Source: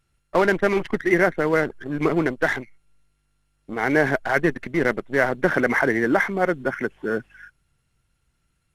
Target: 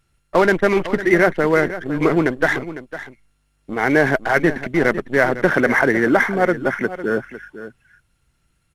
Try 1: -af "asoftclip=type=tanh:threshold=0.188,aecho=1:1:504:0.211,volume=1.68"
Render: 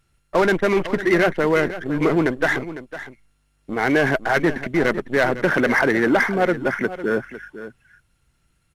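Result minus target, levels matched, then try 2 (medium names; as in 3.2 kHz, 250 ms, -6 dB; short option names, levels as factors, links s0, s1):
saturation: distortion +13 dB
-af "asoftclip=type=tanh:threshold=0.562,aecho=1:1:504:0.211,volume=1.68"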